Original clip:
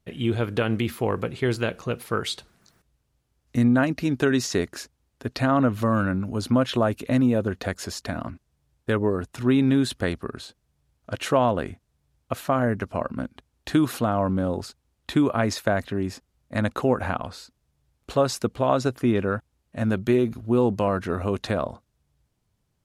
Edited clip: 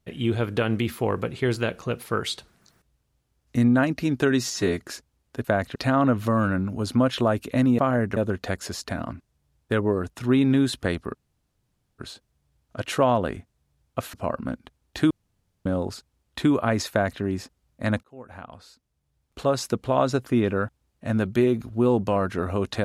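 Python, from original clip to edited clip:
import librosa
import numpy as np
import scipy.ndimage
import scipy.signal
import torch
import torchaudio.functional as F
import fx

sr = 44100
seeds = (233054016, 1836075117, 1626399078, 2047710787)

y = fx.edit(x, sr, fx.stretch_span(start_s=4.4, length_s=0.27, factor=1.5),
    fx.insert_room_tone(at_s=10.32, length_s=0.84),
    fx.move(start_s=12.47, length_s=0.38, to_s=7.34),
    fx.room_tone_fill(start_s=13.82, length_s=0.55),
    fx.duplicate(start_s=15.62, length_s=0.31, to_s=5.31),
    fx.fade_in_span(start_s=16.75, length_s=1.77), tone=tone)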